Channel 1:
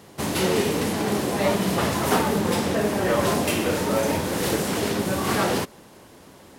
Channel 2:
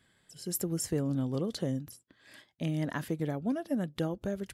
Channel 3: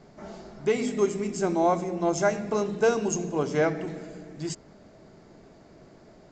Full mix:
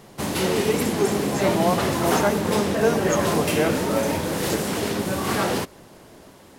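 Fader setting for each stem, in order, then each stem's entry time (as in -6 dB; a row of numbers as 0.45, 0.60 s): -0.5, -1.0, +0.5 dB; 0.00, 0.25, 0.00 s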